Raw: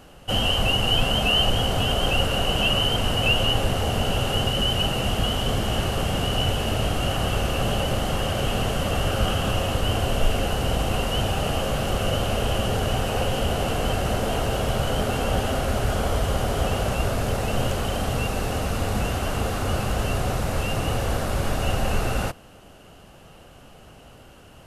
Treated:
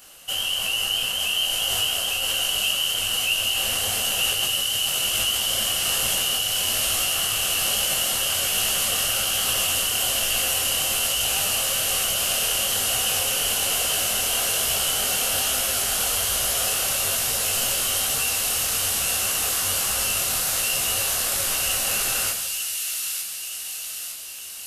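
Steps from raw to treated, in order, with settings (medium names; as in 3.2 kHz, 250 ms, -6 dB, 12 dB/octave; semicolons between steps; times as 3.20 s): pre-emphasis filter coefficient 0.97; reverberation RT60 1.3 s, pre-delay 18 ms, DRR 5.5 dB; in parallel at +2 dB: compressor with a negative ratio -37 dBFS, ratio -0.5; on the sum: band-stop 860 Hz, Q 19; on a send: feedback echo behind a high-pass 907 ms, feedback 58%, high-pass 2.8 kHz, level -3 dB; on the sum: detune thickener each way 40 cents; trim +8 dB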